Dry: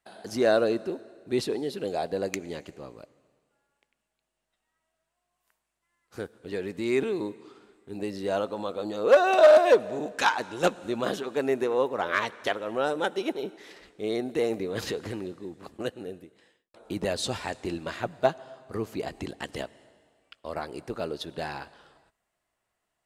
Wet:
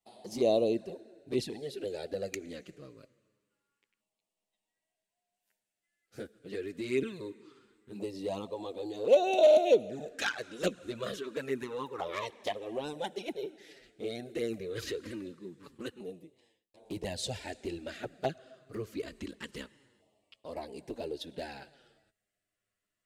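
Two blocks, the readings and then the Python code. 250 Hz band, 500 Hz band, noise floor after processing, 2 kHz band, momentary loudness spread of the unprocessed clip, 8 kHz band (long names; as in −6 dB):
−6.0 dB, −5.5 dB, below −85 dBFS, −9.5 dB, 17 LU, −5.0 dB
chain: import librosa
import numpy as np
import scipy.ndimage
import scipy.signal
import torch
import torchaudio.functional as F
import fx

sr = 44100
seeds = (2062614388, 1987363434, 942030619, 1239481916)

y = fx.filter_lfo_notch(x, sr, shape='saw_down', hz=0.25, low_hz=650.0, high_hz=1600.0, q=1.0)
y = fx.env_flanger(y, sr, rest_ms=9.9, full_db=-21.0)
y = y * librosa.db_to_amplitude(-2.0)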